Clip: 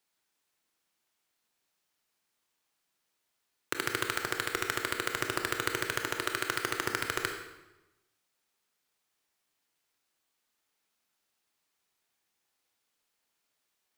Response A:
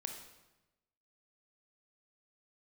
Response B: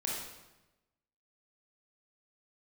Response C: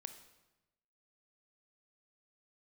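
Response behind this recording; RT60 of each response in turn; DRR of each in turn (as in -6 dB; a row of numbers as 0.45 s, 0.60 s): A; 1.0 s, 1.0 s, 1.0 s; 4.0 dB, -4.0 dB, 8.5 dB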